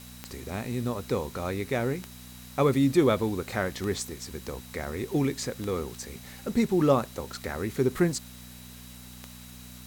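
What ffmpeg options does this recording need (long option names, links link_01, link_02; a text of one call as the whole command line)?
ffmpeg -i in.wav -af "adeclick=threshold=4,bandreject=frequency=61.5:width_type=h:width=4,bandreject=frequency=123:width_type=h:width=4,bandreject=frequency=184.5:width_type=h:width=4,bandreject=frequency=246:width_type=h:width=4,bandreject=frequency=3900:width=30,afftdn=noise_reduction=25:noise_floor=-46" out.wav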